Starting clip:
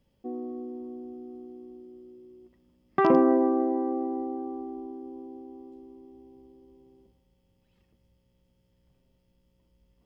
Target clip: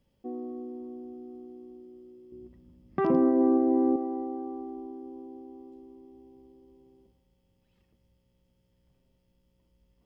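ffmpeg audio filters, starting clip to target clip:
-filter_complex "[0:a]alimiter=limit=-20dB:level=0:latency=1:release=219,asettb=1/sr,asplit=3[a][b][c];[a]atrim=end=2.324[d];[b]atrim=start=2.32:end=3.96,asetpts=PTS-STARTPTS,afade=t=in:d=0.004:c=qsin,afade=t=out:st=1.636:d=0.004:c=qsin,equalizer=f=90:w=0.31:g=15[e];[c]atrim=start=3.956[f];[d][e]acrossfade=d=0.004:c1=hsin:c2=qsin[g];[g][f]acrossfade=d=0.004:c1=qsin:c2=hsin,volume=-1.5dB"

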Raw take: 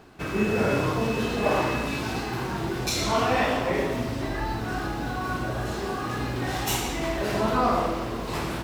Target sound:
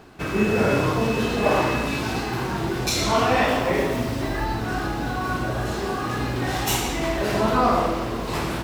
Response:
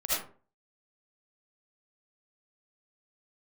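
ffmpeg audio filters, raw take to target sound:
-filter_complex "[0:a]asettb=1/sr,asplit=3[a][b][c];[a]atrim=end=3.484[d];[b]atrim=start=3.48:end=4.45,asetpts=PTS-STARTPTS,afade=t=in:d=0.004:c=qsin,afade=t=out:st=0.966:d=0.004:c=qsin,highshelf=f=11k:g=6[e];[c]atrim=start=4.446[f];[d][e]acrossfade=d=0.004:c1=hsin:c2=qsin[g];[g][f]acrossfade=d=0.004:c1=qsin:c2=hsin,volume=3.5dB"

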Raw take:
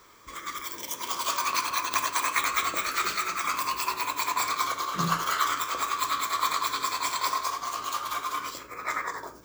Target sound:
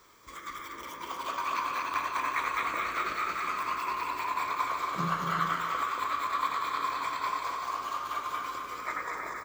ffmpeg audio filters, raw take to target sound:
-filter_complex "[0:a]aecho=1:1:230|379.5|476.7|539.8|580.9:0.631|0.398|0.251|0.158|0.1,acrossover=split=2900[a][b];[b]acompressor=threshold=-47dB:ratio=6[c];[a][c]amix=inputs=2:normalize=0,volume=-4dB"

